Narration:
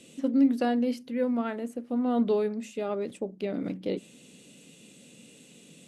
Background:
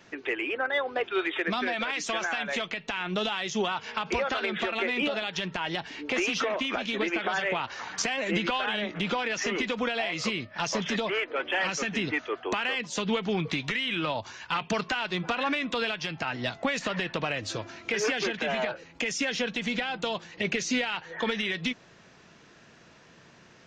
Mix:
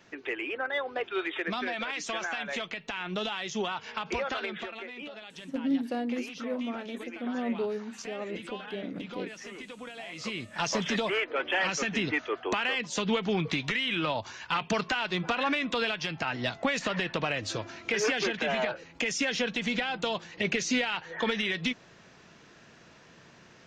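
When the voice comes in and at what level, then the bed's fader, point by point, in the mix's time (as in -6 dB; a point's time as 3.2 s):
5.30 s, -6.0 dB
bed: 4.39 s -3.5 dB
4.9 s -14 dB
9.96 s -14 dB
10.53 s 0 dB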